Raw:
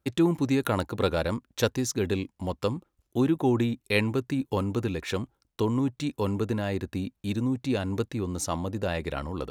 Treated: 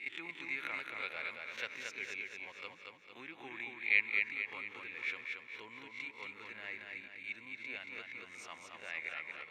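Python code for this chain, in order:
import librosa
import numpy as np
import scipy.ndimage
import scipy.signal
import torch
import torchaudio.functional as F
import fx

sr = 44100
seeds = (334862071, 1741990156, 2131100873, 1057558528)

p1 = fx.spec_swells(x, sr, rise_s=0.33)
p2 = fx.bandpass_q(p1, sr, hz=2200.0, q=12.0)
p3 = p2 + fx.echo_feedback(p2, sr, ms=227, feedback_pct=49, wet_db=-4, dry=0)
y = F.gain(torch.from_numpy(p3), 6.5).numpy()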